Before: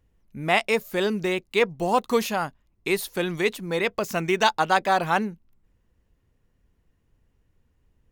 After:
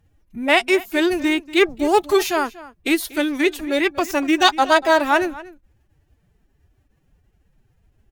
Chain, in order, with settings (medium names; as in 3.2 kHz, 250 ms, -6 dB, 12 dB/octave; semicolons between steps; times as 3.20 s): formant-preserving pitch shift +9 st; echo from a far wall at 41 m, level -18 dB; trim +6 dB